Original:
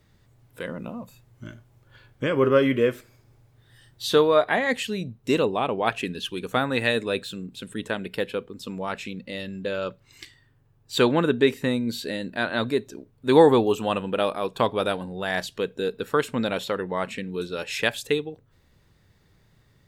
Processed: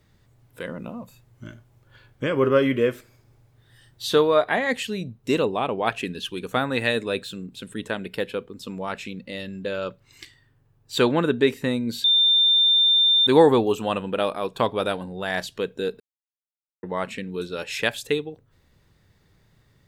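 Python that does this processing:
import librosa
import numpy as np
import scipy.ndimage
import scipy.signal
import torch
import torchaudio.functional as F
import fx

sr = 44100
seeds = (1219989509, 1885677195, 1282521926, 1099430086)

y = fx.edit(x, sr, fx.bleep(start_s=12.04, length_s=1.23, hz=3590.0, db=-14.5),
    fx.silence(start_s=16.0, length_s=0.83), tone=tone)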